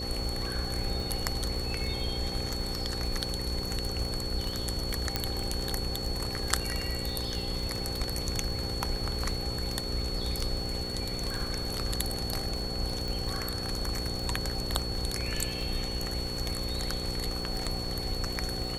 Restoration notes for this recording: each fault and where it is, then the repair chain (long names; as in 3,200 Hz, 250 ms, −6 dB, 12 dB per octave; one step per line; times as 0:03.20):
mains buzz 60 Hz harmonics 9 −38 dBFS
surface crackle 28 per second −35 dBFS
whistle 4,400 Hz −36 dBFS
0:05.16: click −12 dBFS
0:13.08: click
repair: click removal
hum removal 60 Hz, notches 9
notch filter 4,400 Hz, Q 30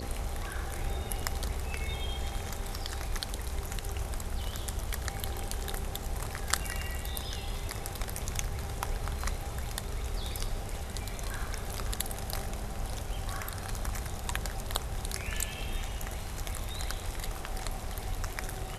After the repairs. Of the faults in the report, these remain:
none of them is left